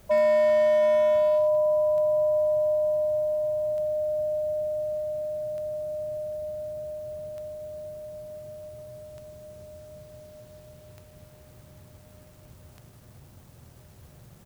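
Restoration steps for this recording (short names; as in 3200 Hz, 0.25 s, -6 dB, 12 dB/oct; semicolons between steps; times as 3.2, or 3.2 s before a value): clip repair -18 dBFS; de-click; inverse comb 0.719 s -14 dB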